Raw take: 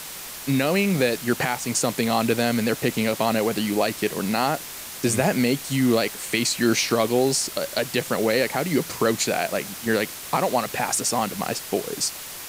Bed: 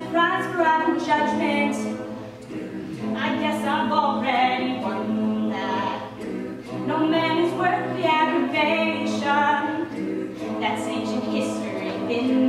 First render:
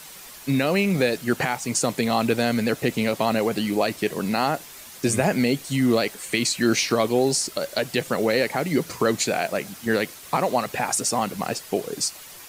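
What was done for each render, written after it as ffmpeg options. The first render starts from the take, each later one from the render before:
-af "afftdn=nr=8:nf=-37"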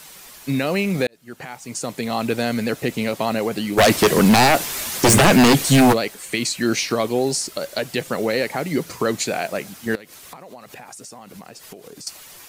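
-filter_complex "[0:a]asplit=3[s0][s1][s2];[s0]afade=t=out:st=3.77:d=0.02[s3];[s1]aeval=exprs='0.376*sin(PI/2*3.55*val(0)/0.376)':c=same,afade=t=in:st=3.77:d=0.02,afade=t=out:st=5.92:d=0.02[s4];[s2]afade=t=in:st=5.92:d=0.02[s5];[s3][s4][s5]amix=inputs=3:normalize=0,asettb=1/sr,asplit=3[s6][s7][s8];[s6]atrim=end=9.954[s9];[s7]atrim=start=9.95:end=12.07,asetpts=PTS-STARTPTS,afade=t=in:d=0.004:c=qsin,afade=t=out:st=2.116:d=0.004:c=qsin,acompressor=threshold=0.0178:ratio=16:attack=3.2:release=140:knee=1:detection=peak[s10];[s8]atrim=start=12.066[s11];[s9][s10]acrossfade=d=0.004:c1=hsin:c2=qsin[s12];[s12][s11]acrossfade=d=0.004:c1=qsin:c2=hsin,asplit=2[s13][s14];[s13]atrim=end=1.07,asetpts=PTS-STARTPTS,afade=t=out:st=1.066:d=0.004:c=hsin[s15];[s14]atrim=start=1.07,asetpts=PTS-STARTPTS,afade=t=in:d=1.32[s16];[s15][s16]concat=n=2:v=0:a=1"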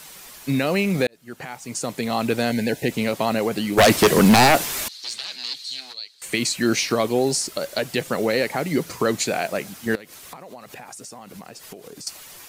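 -filter_complex "[0:a]asettb=1/sr,asplit=3[s0][s1][s2];[s0]atrim=end=2.504[s3];[s1]atrim=start=2.5:end=2.91,asetpts=PTS-STARTPTS,afade=t=in:d=0.004:c=qsin,afade=t=out:st=0.406:d=0.004:c=qsin,asuperstop=centerf=1200:order=12:qfactor=2.5[s4];[s2]atrim=start=2.906[s5];[s3][s4]acrossfade=d=0.004:c1=hsin:c2=qsin[s6];[s6][s5]acrossfade=d=0.004:c1=qsin:c2=hsin,asettb=1/sr,asplit=3[s7][s8][s9];[s7]atrim=end=4.884[s10];[s8]atrim=start=4.88:end=6.22,asetpts=PTS-STARTPTS,afade=t=in:d=0.004:c=qsin,afade=t=out:st=1.336:d=0.004:c=qsin,bandpass=f=4200:t=q:w=7.3[s11];[s9]atrim=start=6.216[s12];[s10][s11]acrossfade=d=0.004:c1=hsin:c2=qsin[s13];[s13][s12]acrossfade=d=0.004:c1=qsin:c2=hsin"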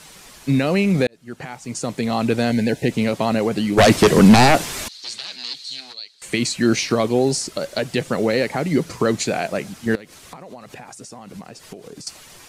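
-af "lowpass=9600,lowshelf=f=320:g=6.5"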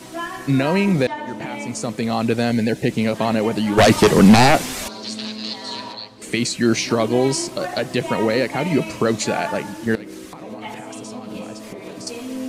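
-filter_complex "[1:a]volume=0.355[s0];[0:a][s0]amix=inputs=2:normalize=0"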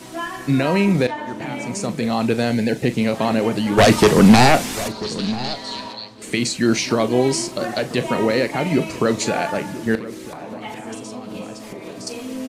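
-filter_complex "[0:a]asplit=2[s0][s1];[s1]adelay=40,volume=0.211[s2];[s0][s2]amix=inputs=2:normalize=0,asplit=2[s3][s4];[s4]adelay=991.3,volume=0.178,highshelf=f=4000:g=-22.3[s5];[s3][s5]amix=inputs=2:normalize=0"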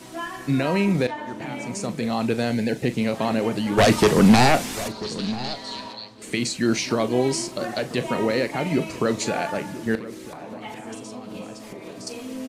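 -af "volume=0.631"

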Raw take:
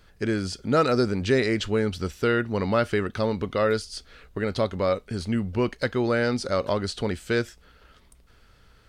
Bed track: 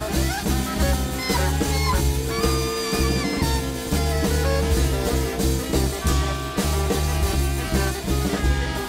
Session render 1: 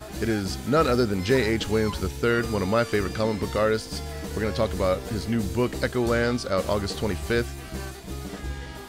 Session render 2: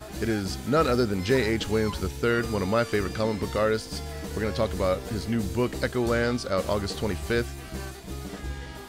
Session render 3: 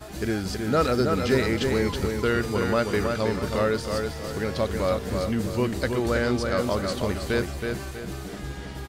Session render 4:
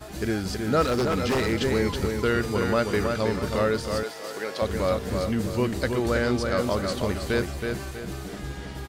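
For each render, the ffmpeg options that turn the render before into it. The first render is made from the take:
-filter_complex "[1:a]volume=0.237[s0];[0:a][s0]amix=inputs=2:normalize=0"
-af "volume=0.841"
-filter_complex "[0:a]asplit=2[s0][s1];[s1]adelay=322,lowpass=f=4900:p=1,volume=0.596,asplit=2[s2][s3];[s3]adelay=322,lowpass=f=4900:p=1,volume=0.38,asplit=2[s4][s5];[s5]adelay=322,lowpass=f=4900:p=1,volume=0.38,asplit=2[s6][s7];[s7]adelay=322,lowpass=f=4900:p=1,volume=0.38,asplit=2[s8][s9];[s9]adelay=322,lowpass=f=4900:p=1,volume=0.38[s10];[s0][s2][s4][s6][s8][s10]amix=inputs=6:normalize=0"
-filter_complex "[0:a]asettb=1/sr,asplit=3[s0][s1][s2];[s0]atrim=end=0.824[s3];[s1]atrim=start=0.82:end=1.53,asetpts=PTS-STARTPTS,afade=t=in:d=0.004:c=qsin,afade=t=out:st=0.706:d=0.004:c=qsin,aeval=exprs='0.126*(abs(mod(val(0)/0.126+3,4)-2)-1)':c=same[s4];[s2]atrim=start=1.526[s5];[s3][s4]acrossfade=d=0.004:c1=hsin:c2=qsin[s6];[s6][s5]acrossfade=d=0.004:c1=qsin:c2=hsin,asettb=1/sr,asplit=3[s7][s8][s9];[s7]atrim=end=4.034[s10];[s8]atrim=start=4.03:end=4.62,asetpts=PTS-STARTPTS,afade=t=in:d=0.004:c=qsin,afade=t=out:st=0.586:d=0.004:c=qsin,highpass=420[s11];[s9]atrim=start=4.616[s12];[s10][s11]acrossfade=d=0.004:c1=hsin:c2=qsin[s13];[s13][s12]acrossfade=d=0.004:c1=qsin:c2=hsin"

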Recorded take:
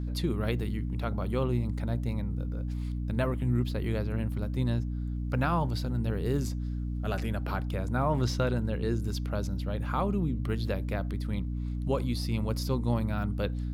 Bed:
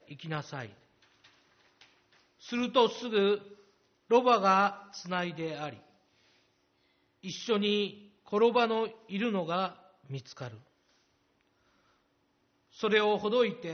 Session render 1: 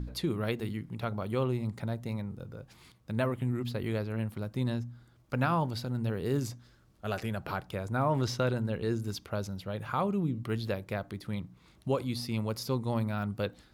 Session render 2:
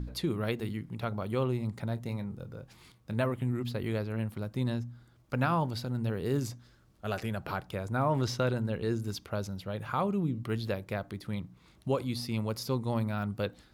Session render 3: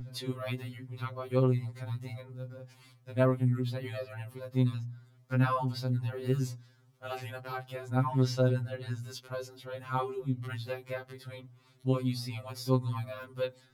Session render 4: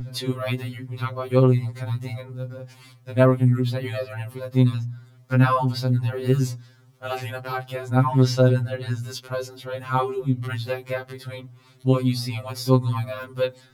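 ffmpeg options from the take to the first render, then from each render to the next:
-af "bandreject=f=60:t=h:w=4,bandreject=f=120:t=h:w=4,bandreject=f=180:t=h:w=4,bandreject=f=240:t=h:w=4,bandreject=f=300:t=h:w=4"
-filter_complex "[0:a]asettb=1/sr,asplit=3[s0][s1][s2];[s0]atrim=end=1.884[s3];[s1]atrim=start=1.88:end=3.24,asetpts=PTS-STARTPTS,afade=t=in:d=0.004:c=qsin,afade=t=out:st=1.356:d=0.004:c=qsin,asplit=2[s4][s5];[s5]adelay=25,volume=0.224[s6];[s4][s6]amix=inputs=2:normalize=0,atrim=end_sample=59976[s7];[s2]atrim=start=3.236[s8];[s3][s7]acrossfade=d=0.004:c1=hsin:c2=qsin[s9];[s9][s8]acrossfade=d=0.004:c1=qsin:c2=hsin"
-af "afftfilt=real='re*2.45*eq(mod(b,6),0)':imag='im*2.45*eq(mod(b,6),0)':win_size=2048:overlap=0.75"
-af "volume=2.99"

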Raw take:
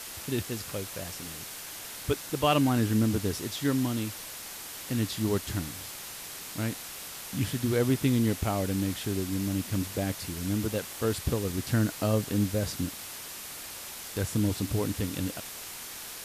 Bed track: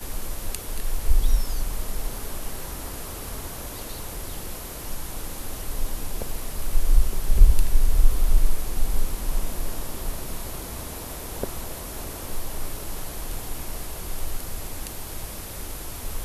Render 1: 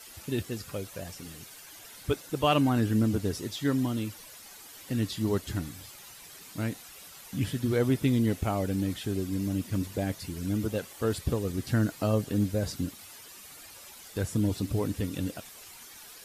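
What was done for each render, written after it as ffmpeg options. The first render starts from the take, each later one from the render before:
-af "afftdn=nr=11:nf=-42"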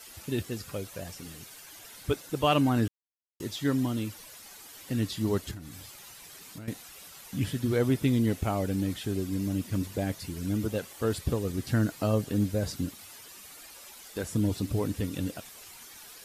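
-filter_complex "[0:a]asettb=1/sr,asplit=3[s0][s1][s2];[s0]atrim=end=5.514[s3];[s1]atrim=start=5.51:end=6.68,asetpts=PTS-STARTPTS,afade=t=in:d=0.004:c=qsin,afade=t=out:st=1.166:d=0.004:c=qsin,acompressor=threshold=0.0126:ratio=10:attack=3.2:release=140:knee=1:detection=peak[s4];[s2]atrim=start=6.676[s5];[s3][s4]acrossfade=d=0.004:c1=hsin:c2=qsin[s6];[s6][s5]acrossfade=d=0.004:c1=qsin:c2=hsin,asettb=1/sr,asplit=3[s7][s8][s9];[s7]atrim=end=13.504[s10];[s8]atrim=start=13.5:end=14.29,asetpts=PTS-STARTPTS,afade=t=in:d=0.004:c=qsin,afade=t=out:st=0.786:d=0.004:c=qsin,equalizer=f=110:t=o:w=0.77:g=-12.5[s11];[s9]atrim=start=14.286[s12];[s10][s11]acrossfade=d=0.004:c1=hsin:c2=qsin[s13];[s13][s12]acrossfade=d=0.004:c1=qsin:c2=hsin,asplit=3[s14][s15][s16];[s14]atrim=end=2.88,asetpts=PTS-STARTPTS,afade=t=out:st=2.876:d=0.004:c=hsin[s17];[s15]atrim=start=2.88:end=3.4,asetpts=PTS-STARTPTS,volume=0[s18];[s16]atrim=start=3.4,asetpts=PTS-STARTPTS,afade=t=in:d=0.004:c=hsin[s19];[s17][s18][s19]concat=n=3:v=0:a=1"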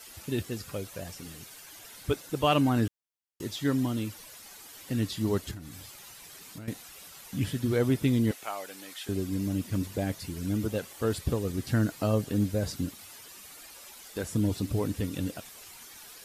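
-filter_complex "[0:a]asettb=1/sr,asplit=3[s0][s1][s2];[s0]atrim=end=8.314[s3];[s1]atrim=start=8.31:end=9.09,asetpts=PTS-STARTPTS,afade=t=in:d=0.004:c=qsin,afade=t=out:st=0.776:d=0.004:c=qsin,highpass=850[s4];[s2]atrim=start=9.086[s5];[s3][s4]acrossfade=d=0.004:c1=hsin:c2=qsin[s6];[s6][s5]acrossfade=d=0.004:c1=qsin:c2=hsin"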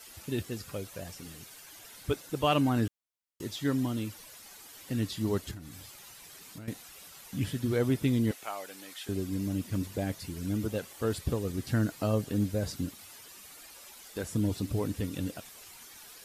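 -af "volume=0.794"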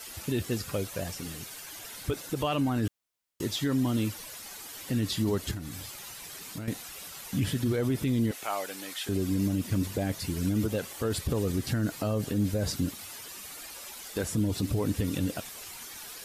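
-af "acontrast=80,alimiter=limit=0.106:level=0:latency=1:release=50"

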